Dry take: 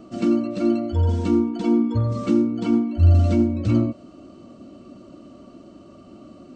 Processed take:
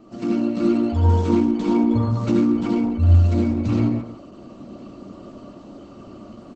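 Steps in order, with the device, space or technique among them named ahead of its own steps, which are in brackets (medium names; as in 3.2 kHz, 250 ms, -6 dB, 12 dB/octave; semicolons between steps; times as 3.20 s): peaking EQ 1.1 kHz +3 dB 0.92 oct; speakerphone in a meeting room (reverberation RT60 0.40 s, pre-delay 65 ms, DRR -1.5 dB; speakerphone echo 160 ms, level -11 dB; level rider gain up to 6 dB; trim -4.5 dB; Opus 12 kbps 48 kHz)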